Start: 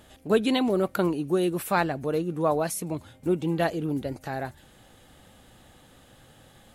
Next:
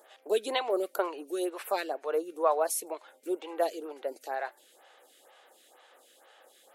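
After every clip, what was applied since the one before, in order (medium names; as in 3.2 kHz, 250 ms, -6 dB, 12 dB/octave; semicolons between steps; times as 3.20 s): inverse Chebyshev high-pass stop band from 160 Hz, stop band 50 dB; lamp-driven phase shifter 2.1 Hz; trim +1 dB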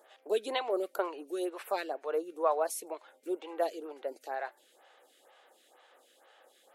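treble shelf 6 kHz -5.5 dB; trim -2.5 dB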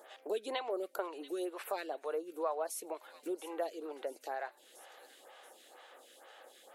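feedback echo behind a high-pass 683 ms, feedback 53%, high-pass 3.4 kHz, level -15 dB; compression 2:1, threshold -47 dBFS, peak gain reduction 13.5 dB; trim +5 dB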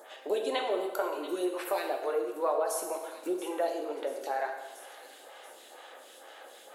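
plate-style reverb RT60 1.3 s, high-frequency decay 0.8×, DRR 2 dB; trim +5 dB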